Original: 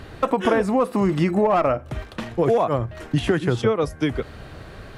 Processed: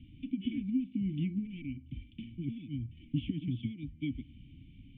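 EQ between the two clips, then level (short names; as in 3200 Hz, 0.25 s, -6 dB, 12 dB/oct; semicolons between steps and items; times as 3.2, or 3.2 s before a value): vocal tract filter i; inverse Chebyshev band-stop 480–1300 Hz, stop band 50 dB; bell 220 Hz -5.5 dB 0.47 oct; 0.0 dB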